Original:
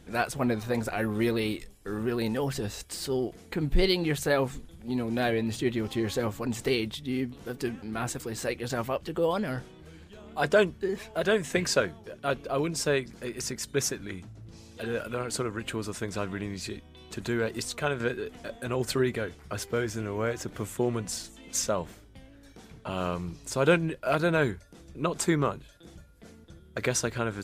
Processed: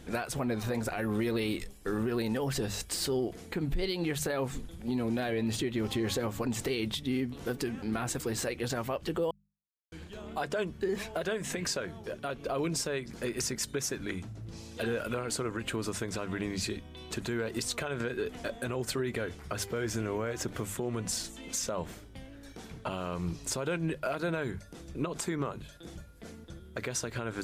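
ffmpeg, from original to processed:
-filter_complex "[0:a]asplit=3[s0][s1][s2];[s0]atrim=end=9.31,asetpts=PTS-STARTPTS,afade=t=out:st=9.306:d=0.004:c=hsin[s3];[s1]atrim=start=9.31:end=9.92,asetpts=PTS-STARTPTS,volume=0[s4];[s2]atrim=start=9.92,asetpts=PTS-STARTPTS,afade=t=in:d=0.004:c=hsin[s5];[s3][s4][s5]concat=n=3:v=0:a=1,bandreject=f=50:t=h:w=6,bandreject=f=100:t=h:w=6,bandreject=f=150:t=h:w=6,bandreject=f=200:t=h:w=6,acompressor=threshold=0.0447:ratio=6,alimiter=level_in=1.33:limit=0.0631:level=0:latency=1:release=168,volume=0.75,volume=1.58"

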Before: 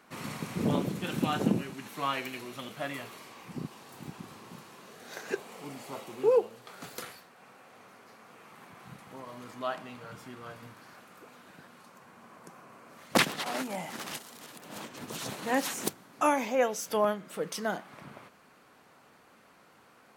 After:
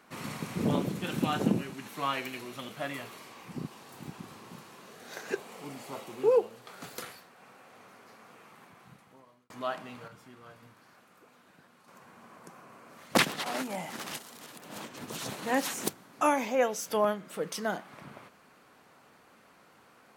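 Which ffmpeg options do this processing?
-filter_complex "[0:a]asplit=4[s0][s1][s2][s3];[s0]atrim=end=9.5,asetpts=PTS-STARTPTS,afade=t=out:st=8.26:d=1.24[s4];[s1]atrim=start=9.5:end=10.082,asetpts=PTS-STARTPTS,afade=t=in:d=0.004:c=hsin[s5];[s2]atrim=start=10.078:end=11.882,asetpts=PTS-STARTPTS,volume=0.447[s6];[s3]atrim=start=11.878[s7];[s4][s5]concat=n=2:v=0:a=1[s8];[s8][s6]acrossfade=d=0.004:c1=hsin:c2=hsin[s9];[s9][s7]acrossfade=d=0.004:c1=hsin:c2=hsin"

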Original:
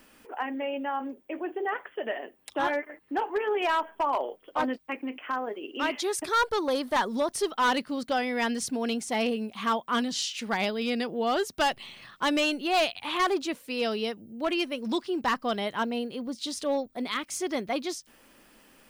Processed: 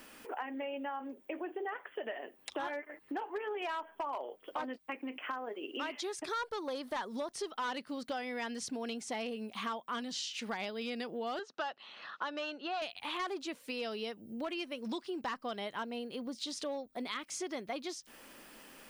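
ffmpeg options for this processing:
-filter_complex "[0:a]asettb=1/sr,asplit=3[s0][s1][s2];[s0]atrim=end=11.394[s3];[s1]atrim=start=11.39:end=12.82,asetpts=PTS-STARTPTS,afade=t=in:d=0.004:c=qsin,afade=t=out:st=1.426:d=0.004:c=qsin,highpass=360,equalizer=f=370:t=q:w=4:g=-4,equalizer=f=1400:t=q:w=4:g=5,equalizer=f=2200:t=q:w=4:g=-9,equalizer=f=3300:t=q:w=4:g=-4,equalizer=f=4700:t=q:w=4:g=-5,lowpass=f=4900:w=0.5412,lowpass=f=4900:w=1.3066[s4];[s2]atrim=start=12.816[s5];[s3][s4]acrossfade=d=0.004:c1=hsin:c2=qsin[s6];[s6][s5]acrossfade=d=0.004:c1=qsin:c2=hsin,acrossover=split=8200[s7][s8];[s8]acompressor=threshold=0.00141:ratio=4:attack=1:release=60[s9];[s7][s9]amix=inputs=2:normalize=0,lowshelf=f=180:g=-7.5,acompressor=threshold=0.00794:ratio=4,volume=1.5"

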